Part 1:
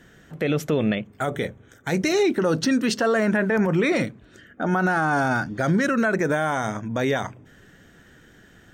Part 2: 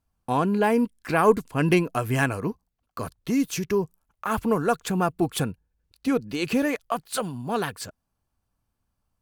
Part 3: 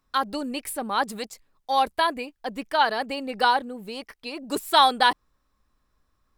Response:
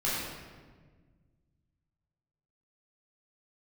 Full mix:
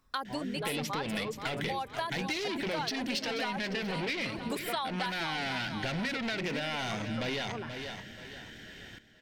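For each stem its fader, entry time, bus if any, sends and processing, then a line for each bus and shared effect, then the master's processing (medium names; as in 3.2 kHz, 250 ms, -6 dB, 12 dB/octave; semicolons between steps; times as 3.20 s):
0.0 dB, 0.25 s, no bus, no send, echo send -13.5 dB, saturation -27 dBFS, distortion -7 dB; high-order bell 3.2 kHz +10.5 dB; band-stop 1.2 kHz, Q 7
-8.5 dB, 0.00 s, bus A, no send, no echo send, low-pass 1.8 kHz
+2.5 dB, 0.00 s, bus A, no send, echo send -19 dB, none
bus A: 0.0 dB, reverb removal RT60 1.7 s; compression 1.5:1, threshold -39 dBFS, peak gain reduction 10.5 dB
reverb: none
echo: feedback delay 482 ms, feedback 37%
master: compression, threshold -31 dBFS, peak gain reduction 11 dB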